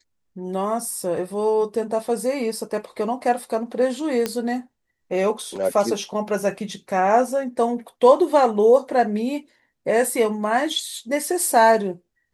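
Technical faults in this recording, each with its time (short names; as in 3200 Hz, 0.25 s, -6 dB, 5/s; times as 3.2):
4.26 pop -9 dBFS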